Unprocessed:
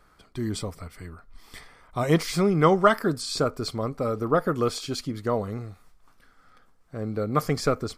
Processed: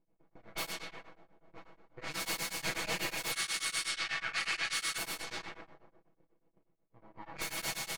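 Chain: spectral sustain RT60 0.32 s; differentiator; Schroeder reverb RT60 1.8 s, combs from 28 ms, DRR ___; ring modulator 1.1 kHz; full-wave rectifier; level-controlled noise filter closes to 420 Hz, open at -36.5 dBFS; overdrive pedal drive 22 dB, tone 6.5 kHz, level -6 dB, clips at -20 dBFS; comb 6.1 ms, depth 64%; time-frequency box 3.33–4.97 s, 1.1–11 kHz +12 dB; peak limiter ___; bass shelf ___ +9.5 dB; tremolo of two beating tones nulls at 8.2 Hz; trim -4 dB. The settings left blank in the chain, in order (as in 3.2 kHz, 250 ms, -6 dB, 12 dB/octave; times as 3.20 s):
0 dB, -20 dBFS, 410 Hz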